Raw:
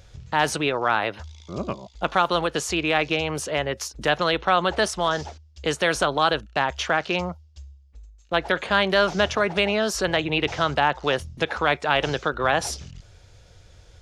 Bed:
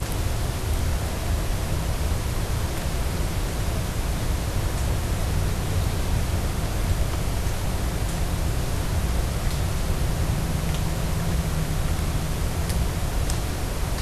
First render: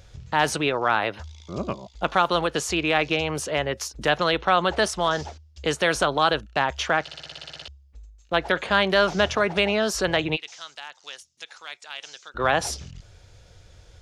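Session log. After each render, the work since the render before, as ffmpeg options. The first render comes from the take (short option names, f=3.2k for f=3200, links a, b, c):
-filter_complex "[0:a]asplit=3[a][b][c];[a]afade=t=out:st=10.35:d=0.02[d];[b]bandpass=f=7k:t=q:w=1.5,afade=t=in:st=10.35:d=0.02,afade=t=out:st=12.34:d=0.02[e];[c]afade=t=in:st=12.34:d=0.02[f];[d][e][f]amix=inputs=3:normalize=0,asplit=12[g][h][i][j][k][l][m][n][o][p][q][r];[g]atrim=end=7.082[s];[h]atrim=start=7.018:end=7.082[t];[i]atrim=start=7.018:end=7.082[u];[j]atrim=start=7.018:end=7.082[v];[k]atrim=start=7.018:end=7.082[w];[l]atrim=start=7.018:end=7.082[x];[m]atrim=start=7.018:end=7.082[y];[n]atrim=start=7.018:end=7.082[z];[o]atrim=start=7.018:end=7.082[aa];[p]atrim=start=7.018:end=7.082[ab];[q]atrim=start=7.018:end=7.082[ac];[r]atrim=start=7.678[ad];[s][t]acrossfade=d=0.004:c1=hsin:c2=hsin[ae];[ae][u]acrossfade=d=0.004:c1=hsin:c2=hsin[af];[af][v]acrossfade=d=0.004:c1=hsin:c2=hsin[ag];[ag][w]acrossfade=d=0.004:c1=hsin:c2=hsin[ah];[ah][x]acrossfade=d=0.004:c1=hsin:c2=hsin[ai];[ai][y]acrossfade=d=0.004:c1=hsin:c2=hsin[aj];[aj][z]acrossfade=d=0.004:c1=hsin:c2=hsin[ak];[ak][aa]acrossfade=d=0.004:c1=hsin:c2=hsin[al];[al][ab]acrossfade=d=0.004:c1=hsin:c2=hsin[am];[am][ac]acrossfade=d=0.004:c1=hsin:c2=hsin[an];[an][ad]acrossfade=d=0.004:c1=hsin:c2=hsin"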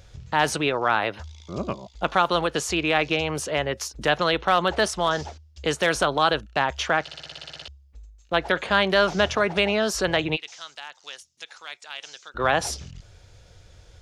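-filter_complex "[0:a]asplit=3[a][b][c];[a]afade=t=out:st=4.44:d=0.02[d];[b]asoftclip=type=hard:threshold=-10dB,afade=t=in:st=4.44:d=0.02,afade=t=out:st=6.2:d=0.02[e];[c]afade=t=in:st=6.2:d=0.02[f];[d][e][f]amix=inputs=3:normalize=0"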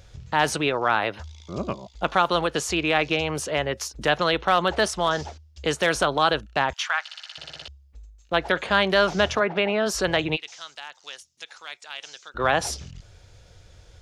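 -filter_complex "[0:a]asettb=1/sr,asplit=3[a][b][c];[a]atrim=end=6.734[d];[b]atrim=start=6.73:end=7.38,asetpts=PTS-STARTPTS,afade=t=in:d=0.004:c=qsin,afade=t=out:st=0.646:d=0.004:c=qsin,highpass=f=980:w=0.5412,highpass=f=980:w=1.3066[e];[c]atrim=start=7.376[f];[d][e]acrossfade=d=0.004:c1=hsin:c2=qsin[g];[g][f]acrossfade=d=0.004:c1=qsin:c2=hsin,asplit=3[h][i][j];[h]afade=t=out:st=9.39:d=0.02[k];[i]highpass=160,lowpass=2.7k,afade=t=in:st=9.39:d=0.02,afade=t=out:st=9.85:d=0.02[l];[j]afade=t=in:st=9.85:d=0.02[m];[k][l][m]amix=inputs=3:normalize=0"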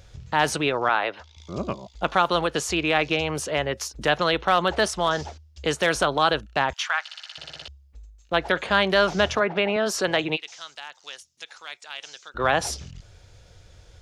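-filter_complex "[0:a]asettb=1/sr,asplit=3[a][b][c];[a]atrim=end=0.894[d];[b]atrim=start=0.89:end=1.37,asetpts=PTS-STARTPTS,afade=t=in:d=0.004:c=qsin,afade=t=out:st=0.476:d=0.004:c=qsin,acrossover=split=300 5400:gain=0.2 1 0.2[e][f][g];[e][f][g]amix=inputs=3:normalize=0[h];[c]atrim=start=1.366[i];[d][h]acrossfade=d=0.004:c1=hsin:c2=qsin[j];[j][i]acrossfade=d=0.004:c1=qsin:c2=hsin,asettb=1/sr,asplit=3[k][l][m];[k]atrim=end=9.764[n];[l]atrim=start=9.76:end=10.51,asetpts=PTS-STARTPTS,afade=t=in:d=0.004:c=qsin,afade=t=out:st=0.746:d=0.004:c=qsin,highpass=170[o];[m]atrim=start=10.506[p];[n][o]acrossfade=d=0.004:c1=hsin:c2=qsin[q];[q][p]acrossfade=d=0.004:c1=qsin:c2=hsin"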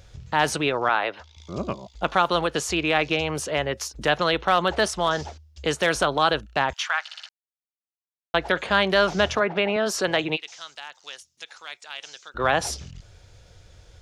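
-filter_complex "[0:a]asplit=3[a][b][c];[a]atrim=end=7.29,asetpts=PTS-STARTPTS,afade=t=out:st=7.286:d=0.004:c=hsin[d];[b]atrim=start=7.29:end=8.34,asetpts=PTS-STARTPTS,volume=0[e];[c]atrim=start=8.34,asetpts=PTS-STARTPTS,afade=t=in:d=0.004:c=hsin[f];[d][e][f]concat=n=3:v=0:a=1"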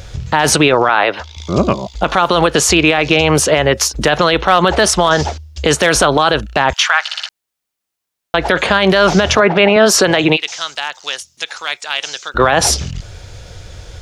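-af "alimiter=level_in=17dB:limit=-1dB:release=50:level=0:latency=1"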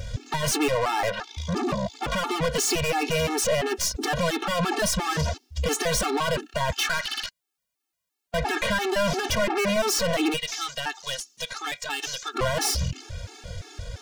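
-af "aeval=exprs='(tanh(8.91*val(0)+0.3)-tanh(0.3))/8.91':c=same,afftfilt=real='re*gt(sin(2*PI*2.9*pts/sr)*(1-2*mod(floor(b*sr/1024/230),2)),0)':imag='im*gt(sin(2*PI*2.9*pts/sr)*(1-2*mod(floor(b*sr/1024/230),2)),0)':win_size=1024:overlap=0.75"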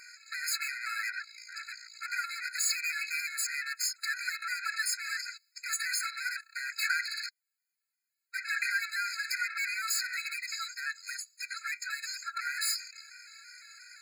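-af "aeval=exprs='if(lt(val(0),0),0.708*val(0),val(0))':c=same,afftfilt=real='re*eq(mod(floor(b*sr/1024/1300),2),1)':imag='im*eq(mod(floor(b*sr/1024/1300),2),1)':win_size=1024:overlap=0.75"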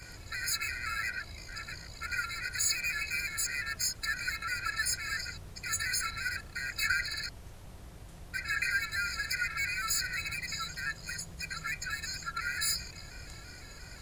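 -filter_complex "[1:a]volume=-23.5dB[a];[0:a][a]amix=inputs=2:normalize=0"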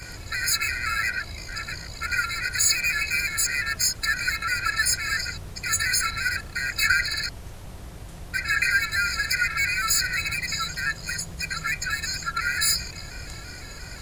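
-af "volume=9dB"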